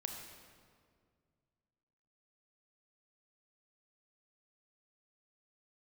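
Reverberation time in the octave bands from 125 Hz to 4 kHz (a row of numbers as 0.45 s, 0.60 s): 2.8 s, 2.5 s, 2.2 s, 1.9 s, 1.6 s, 1.3 s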